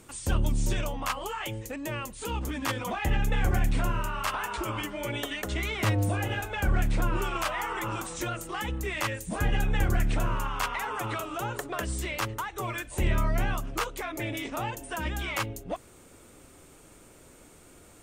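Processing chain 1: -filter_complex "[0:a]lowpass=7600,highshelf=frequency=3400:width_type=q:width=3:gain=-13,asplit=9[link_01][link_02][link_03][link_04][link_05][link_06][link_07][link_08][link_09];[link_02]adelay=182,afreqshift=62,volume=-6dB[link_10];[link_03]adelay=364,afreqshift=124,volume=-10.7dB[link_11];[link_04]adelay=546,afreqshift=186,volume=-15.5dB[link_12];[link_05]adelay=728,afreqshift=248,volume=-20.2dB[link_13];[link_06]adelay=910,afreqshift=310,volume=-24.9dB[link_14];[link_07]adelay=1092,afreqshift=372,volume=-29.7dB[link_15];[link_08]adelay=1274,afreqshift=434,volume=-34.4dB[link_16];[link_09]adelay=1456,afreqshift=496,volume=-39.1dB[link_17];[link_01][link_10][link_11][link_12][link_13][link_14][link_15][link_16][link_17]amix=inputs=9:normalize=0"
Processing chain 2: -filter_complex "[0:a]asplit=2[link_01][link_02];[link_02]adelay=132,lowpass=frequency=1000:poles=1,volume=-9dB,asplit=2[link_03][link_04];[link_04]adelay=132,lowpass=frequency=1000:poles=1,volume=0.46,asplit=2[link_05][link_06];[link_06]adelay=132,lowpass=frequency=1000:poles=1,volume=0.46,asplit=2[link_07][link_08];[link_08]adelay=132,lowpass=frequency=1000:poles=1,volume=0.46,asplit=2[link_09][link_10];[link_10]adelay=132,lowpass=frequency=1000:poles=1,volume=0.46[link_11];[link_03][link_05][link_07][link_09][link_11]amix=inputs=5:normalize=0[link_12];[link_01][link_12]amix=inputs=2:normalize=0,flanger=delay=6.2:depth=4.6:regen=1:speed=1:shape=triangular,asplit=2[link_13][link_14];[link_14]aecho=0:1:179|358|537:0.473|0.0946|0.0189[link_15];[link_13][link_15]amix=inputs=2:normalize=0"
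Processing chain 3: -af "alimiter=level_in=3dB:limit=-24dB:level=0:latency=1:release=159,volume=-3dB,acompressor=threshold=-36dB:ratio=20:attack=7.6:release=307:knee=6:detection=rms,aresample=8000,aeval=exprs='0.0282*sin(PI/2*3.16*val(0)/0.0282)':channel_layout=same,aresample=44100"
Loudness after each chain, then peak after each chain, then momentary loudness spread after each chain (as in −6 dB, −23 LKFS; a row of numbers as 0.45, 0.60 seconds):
−27.5, −32.5, −35.0 LKFS; −11.0, −13.5, −25.5 dBFS; 7, 6, 8 LU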